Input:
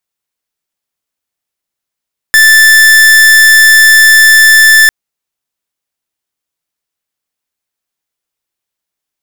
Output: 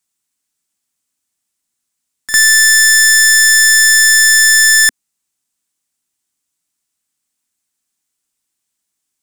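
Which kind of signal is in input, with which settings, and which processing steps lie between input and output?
pulse 1760 Hz, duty 44% -3.5 dBFS 2.55 s
graphic EQ 250/500/8000 Hz +7/-6/+11 dB; limiter -2 dBFS; pre-echo 53 ms -12.5 dB

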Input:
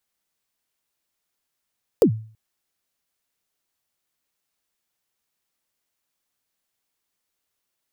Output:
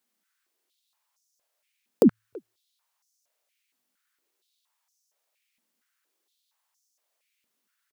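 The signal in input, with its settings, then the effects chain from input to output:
kick drum length 0.33 s, from 530 Hz, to 110 Hz, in 87 ms, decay 0.44 s, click on, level -8 dB
compressor, threshold -19 dBFS; speakerphone echo 0.33 s, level -24 dB; stepped high-pass 4.3 Hz 230–5900 Hz

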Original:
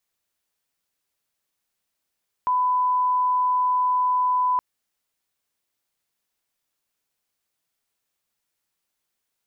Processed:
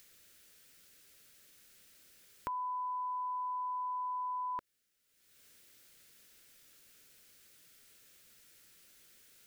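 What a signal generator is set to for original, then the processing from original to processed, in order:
line-up tone -18 dBFS 2.12 s
upward compressor, threshold -46 dBFS; band shelf 870 Hz -10.5 dB 1 oct; compressor, threshold -36 dBFS

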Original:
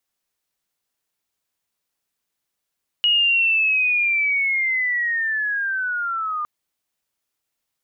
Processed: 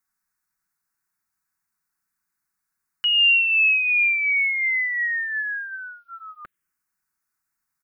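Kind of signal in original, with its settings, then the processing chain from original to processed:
chirp linear 2900 Hz -> 1200 Hz -14 dBFS -> -22.5 dBFS 3.41 s
bell 1500 Hz +7 dB 0.55 oct; comb 5.4 ms, depth 31%; envelope phaser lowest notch 550 Hz, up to 1400 Hz, full sweep at -16.5 dBFS

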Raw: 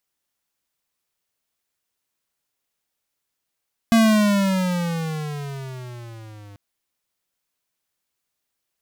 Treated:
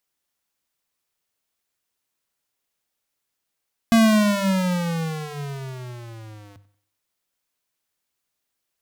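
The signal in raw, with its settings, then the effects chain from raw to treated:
gliding synth tone square, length 2.64 s, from 230 Hz, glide -14.5 st, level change -29 dB, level -13.5 dB
notches 50/100/150/200 Hz; tape echo 91 ms, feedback 40%, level -17.5 dB, low-pass 5500 Hz

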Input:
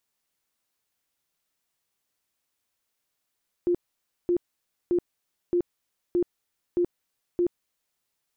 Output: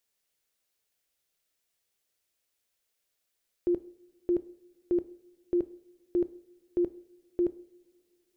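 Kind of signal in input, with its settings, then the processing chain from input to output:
tone bursts 351 Hz, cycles 27, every 0.62 s, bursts 7, -19.5 dBFS
graphic EQ 125/250/500/1000 Hz -5/-5/+3/-7 dB; two-slope reverb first 0.56 s, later 3 s, from -20 dB, DRR 14.5 dB

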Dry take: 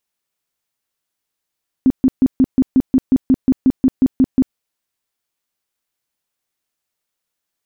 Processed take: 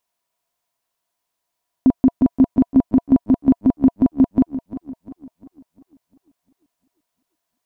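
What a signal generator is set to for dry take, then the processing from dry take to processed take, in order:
tone bursts 261 Hz, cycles 11, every 0.18 s, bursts 15, -7.5 dBFS
small resonant body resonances 690/970 Hz, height 14 dB, ringing for 40 ms; warbling echo 0.348 s, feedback 47%, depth 82 cents, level -13.5 dB

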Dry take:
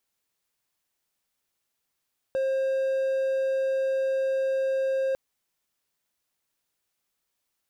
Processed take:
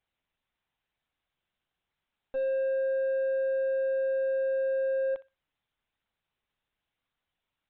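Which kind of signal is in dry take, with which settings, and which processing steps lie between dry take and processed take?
tone triangle 533 Hz -21 dBFS 2.80 s
limiter -24 dBFS; LPC vocoder at 8 kHz pitch kept; thinning echo 62 ms, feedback 26%, high-pass 920 Hz, level -14 dB

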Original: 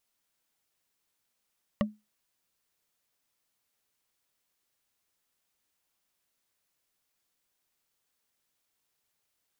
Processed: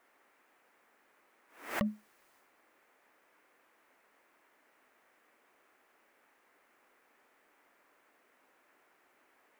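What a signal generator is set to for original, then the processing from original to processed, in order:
wood hit, lowest mode 212 Hz, decay 0.23 s, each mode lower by 2.5 dB, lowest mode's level -20.5 dB
transient shaper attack -3 dB, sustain +7 dB; band noise 250–2200 Hz -70 dBFS; backwards sustainer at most 120 dB/s

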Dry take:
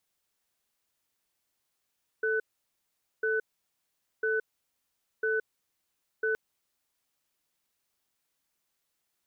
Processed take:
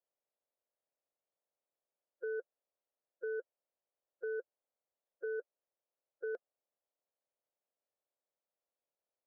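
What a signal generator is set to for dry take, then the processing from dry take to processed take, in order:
cadence 440 Hz, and 1500 Hz, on 0.17 s, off 0.83 s, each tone -28 dBFS 4.12 s
bin magnitudes rounded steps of 30 dB; band-pass 570 Hz, Q 3.1

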